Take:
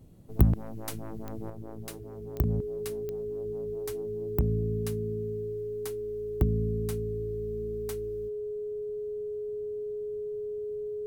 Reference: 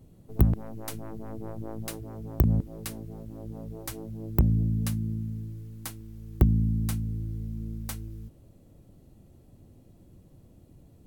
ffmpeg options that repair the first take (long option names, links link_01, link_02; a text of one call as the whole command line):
ffmpeg -i in.wav -af "adeclick=threshold=4,bandreject=frequency=420:width=30,asetnsamples=nb_out_samples=441:pad=0,asendcmd='1.5 volume volume 5dB',volume=0dB" out.wav